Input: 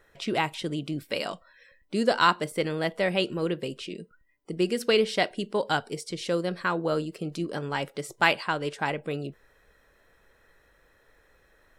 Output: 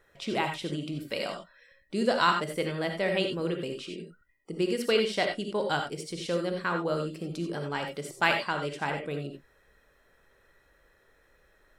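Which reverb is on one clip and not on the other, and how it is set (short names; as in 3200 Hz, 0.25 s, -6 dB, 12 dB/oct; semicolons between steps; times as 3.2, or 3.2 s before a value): non-linear reverb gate 0.11 s rising, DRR 4 dB; gain -3.5 dB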